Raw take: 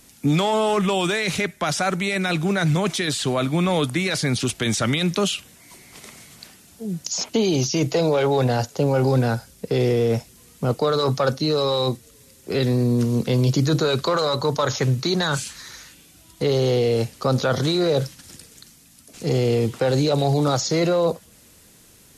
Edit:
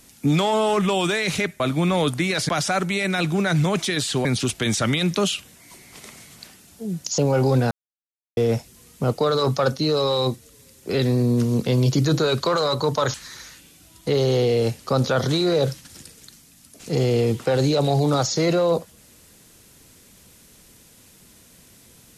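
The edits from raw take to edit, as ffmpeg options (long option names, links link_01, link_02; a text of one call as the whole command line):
ffmpeg -i in.wav -filter_complex "[0:a]asplit=8[link_01][link_02][link_03][link_04][link_05][link_06][link_07][link_08];[link_01]atrim=end=1.602[link_09];[link_02]atrim=start=3.358:end=4.252[link_10];[link_03]atrim=start=1.598:end=3.362[link_11];[link_04]atrim=start=4.248:end=7.182[link_12];[link_05]atrim=start=8.788:end=9.32,asetpts=PTS-STARTPTS,afade=type=out:start_time=0.528:duration=0.004:curve=hsin[link_13];[link_06]atrim=start=9.32:end=9.98,asetpts=PTS-STARTPTS,volume=0[link_14];[link_07]atrim=start=9.98:end=14.752,asetpts=PTS-STARTPTS,afade=type=in:duration=0.004:curve=hsin[link_15];[link_08]atrim=start=15.478[link_16];[link_09][link_10]acrossfade=duration=0.004:curve1=hsin:curve2=hsin[link_17];[link_17][link_11]acrossfade=duration=0.004:curve1=hsin:curve2=hsin[link_18];[link_18][link_12]acrossfade=duration=0.004:curve1=hsin:curve2=hsin[link_19];[link_13][link_14][link_15]concat=n=3:v=0:a=1[link_20];[link_19][link_20]acrossfade=duration=0.004:curve1=hsin:curve2=hsin[link_21];[link_21][link_16]acrossfade=duration=0.004:curve1=hsin:curve2=hsin" out.wav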